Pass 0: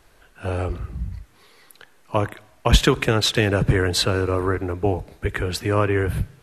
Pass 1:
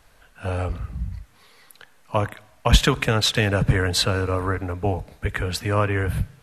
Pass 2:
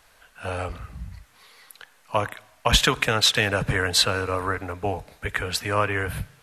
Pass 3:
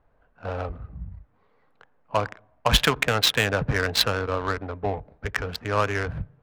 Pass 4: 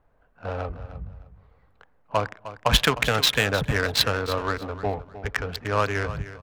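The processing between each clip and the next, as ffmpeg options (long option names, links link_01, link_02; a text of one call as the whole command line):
ffmpeg -i in.wav -af "equalizer=frequency=360:width=5.5:gain=-15" out.wav
ffmpeg -i in.wav -af "lowshelf=frequency=430:gain=-10.5,volume=2.5dB" out.wav
ffmpeg -i in.wav -af "adynamicsmooth=sensitivity=1.5:basefreq=660" out.wav
ffmpeg -i in.wav -af "aecho=1:1:307|614|921:0.2|0.0459|0.0106" out.wav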